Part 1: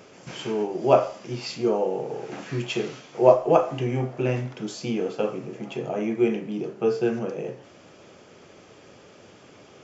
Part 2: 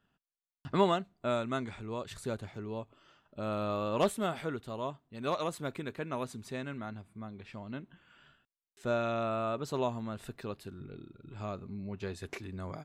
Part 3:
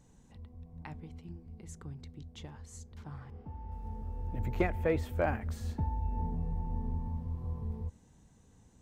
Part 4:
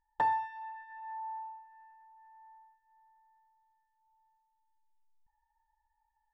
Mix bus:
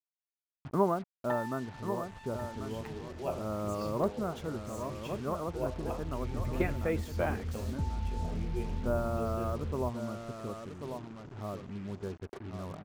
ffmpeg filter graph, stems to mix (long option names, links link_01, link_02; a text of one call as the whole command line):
ffmpeg -i stem1.wav -i stem2.wav -i stem3.wav -i stem4.wav -filter_complex "[0:a]adelay=2350,volume=-18dB[link_01];[1:a]lowpass=frequency=1300:width=0.5412,lowpass=frequency=1300:width=1.3066,dynaudnorm=framelen=310:gausssize=3:maxgain=5.5dB,volume=-5.5dB,asplit=2[link_02][link_03];[link_03]volume=-8.5dB[link_04];[2:a]adelay=2000,volume=-0.5dB[link_05];[3:a]aecho=1:1:6.1:0.98,adelay=1100,volume=-6.5dB,asplit=2[link_06][link_07];[link_07]volume=-12dB[link_08];[link_04][link_08]amix=inputs=2:normalize=0,aecho=0:1:1090:1[link_09];[link_01][link_02][link_05][link_06][link_09]amix=inputs=5:normalize=0,adynamicequalizer=threshold=0.00562:dfrequency=740:dqfactor=1.1:tfrequency=740:tqfactor=1.1:attack=5:release=100:ratio=0.375:range=2:mode=cutabove:tftype=bell,acrusher=bits=7:mix=0:aa=0.5" out.wav